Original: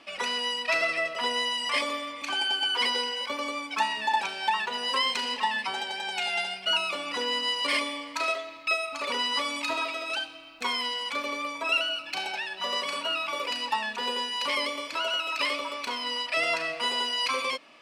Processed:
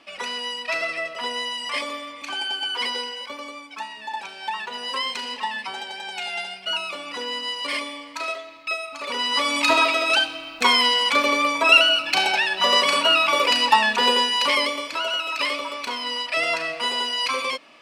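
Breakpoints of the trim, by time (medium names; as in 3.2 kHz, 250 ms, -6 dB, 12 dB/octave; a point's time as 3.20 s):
2.99 s 0 dB
3.89 s -7.5 dB
4.76 s -0.5 dB
9.00 s -0.5 dB
9.70 s +12 dB
14.07 s +12 dB
15.01 s +3.5 dB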